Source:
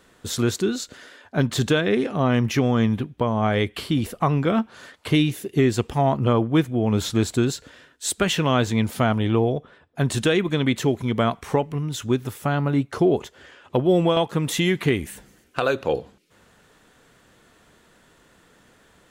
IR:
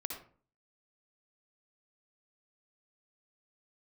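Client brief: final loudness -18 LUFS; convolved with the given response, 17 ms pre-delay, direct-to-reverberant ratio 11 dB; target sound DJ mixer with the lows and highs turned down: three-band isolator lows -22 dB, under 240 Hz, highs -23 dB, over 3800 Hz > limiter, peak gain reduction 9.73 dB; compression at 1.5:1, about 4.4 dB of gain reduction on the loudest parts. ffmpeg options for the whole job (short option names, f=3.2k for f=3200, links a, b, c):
-filter_complex "[0:a]acompressor=threshold=-27dB:ratio=1.5,asplit=2[a][b];[1:a]atrim=start_sample=2205,adelay=17[c];[b][c]afir=irnorm=-1:irlink=0,volume=-11dB[d];[a][d]amix=inputs=2:normalize=0,acrossover=split=240 3800:gain=0.0794 1 0.0708[e][f][g];[e][f][g]amix=inputs=3:normalize=0,volume=13.5dB,alimiter=limit=-5.5dB:level=0:latency=1"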